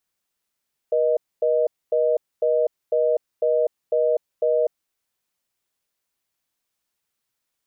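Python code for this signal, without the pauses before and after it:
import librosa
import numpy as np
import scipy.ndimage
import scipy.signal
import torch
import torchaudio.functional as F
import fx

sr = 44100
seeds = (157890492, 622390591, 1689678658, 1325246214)

y = fx.call_progress(sr, length_s=3.92, kind='reorder tone', level_db=-19.5)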